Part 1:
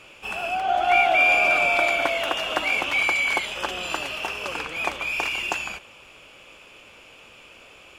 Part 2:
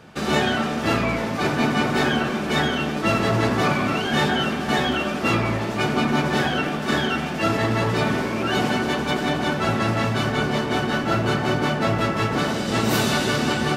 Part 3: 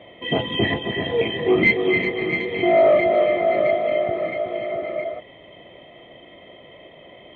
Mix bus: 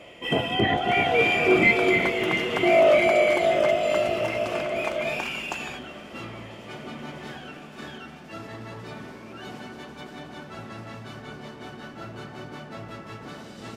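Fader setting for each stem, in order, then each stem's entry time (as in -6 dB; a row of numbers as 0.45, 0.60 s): -5.5, -17.5, -2.5 dB; 0.00, 0.90, 0.00 s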